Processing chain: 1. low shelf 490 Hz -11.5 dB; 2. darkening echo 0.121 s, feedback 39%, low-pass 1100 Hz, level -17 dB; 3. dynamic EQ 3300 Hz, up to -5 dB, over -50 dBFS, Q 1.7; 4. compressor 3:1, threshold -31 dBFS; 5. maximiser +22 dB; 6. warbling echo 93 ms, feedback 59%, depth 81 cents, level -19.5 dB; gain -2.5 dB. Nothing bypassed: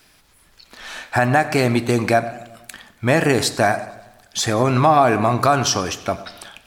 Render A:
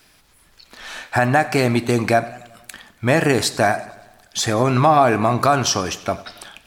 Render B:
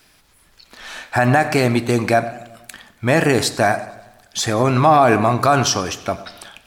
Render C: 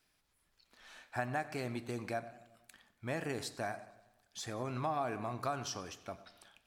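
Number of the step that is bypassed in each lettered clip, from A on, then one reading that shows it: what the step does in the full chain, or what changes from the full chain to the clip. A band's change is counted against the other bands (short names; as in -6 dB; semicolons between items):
2, momentary loudness spread change -4 LU; 4, mean gain reduction 1.5 dB; 5, crest factor change +5.0 dB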